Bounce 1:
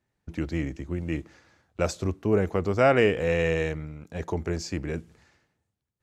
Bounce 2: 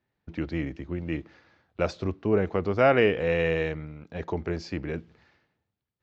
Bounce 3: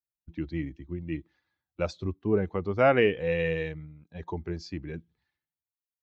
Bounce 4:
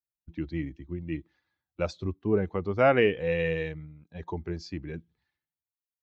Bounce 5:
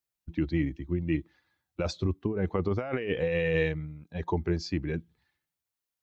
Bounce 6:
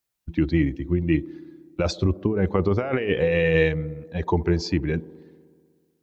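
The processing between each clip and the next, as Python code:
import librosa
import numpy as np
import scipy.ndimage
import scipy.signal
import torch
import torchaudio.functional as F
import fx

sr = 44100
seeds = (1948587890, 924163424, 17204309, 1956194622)

y1 = scipy.signal.sosfilt(scipy.signal.butter(4, 4600.0, 'lowpass', fs=sr, output='sos'), x)
y1 = fx.low_shelf(y1, sr, hz=87.0, db=-6.5)
y2 = fx.bin_expand(y1, sr, power=1.5)
y3 = y2
y4 = fx.over_compress(y3, sr, threshold_db=-30.0, ratio=-1.0)
y4 = y4 * 10.0 ** (2.5 / 20.0)
y5 = fx.echo_wet_bandpass(y4, sr, ms=62, feedback_pct=80, hz=400.0, wet_db=-17.5)
y5 = y5 * 10.0 ** (7.0 / 20.0)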